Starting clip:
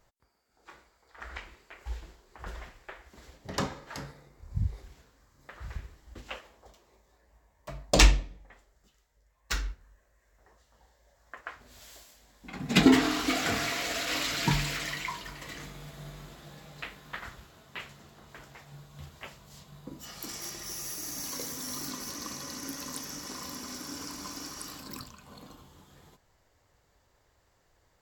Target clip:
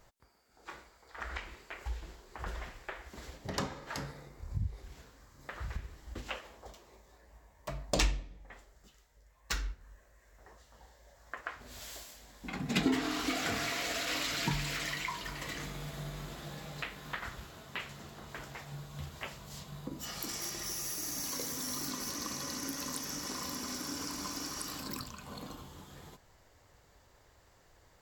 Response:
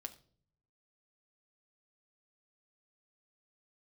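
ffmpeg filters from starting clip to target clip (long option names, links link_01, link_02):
-af "acompressor=threshold=-44dB:ratio=2,volume=5dB"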